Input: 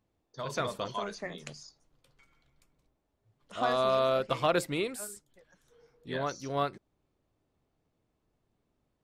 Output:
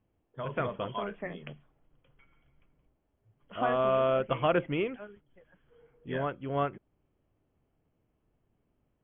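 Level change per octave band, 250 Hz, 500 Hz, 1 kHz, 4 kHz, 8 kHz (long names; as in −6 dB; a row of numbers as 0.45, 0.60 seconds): +2.0 dB, +1.0 dB, 0.0 dB, −6.0 dB, below −35 dB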